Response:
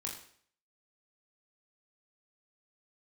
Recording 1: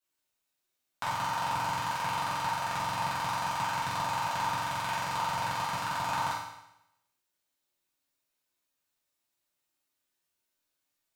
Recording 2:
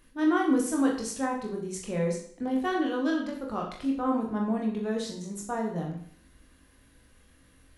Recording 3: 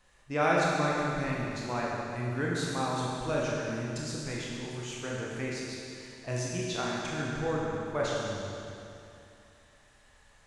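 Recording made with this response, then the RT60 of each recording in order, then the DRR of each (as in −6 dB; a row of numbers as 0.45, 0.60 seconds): 2; 0.85, 0.55, 2.7 seconds; −9.0, −1.0, −5.0 decibels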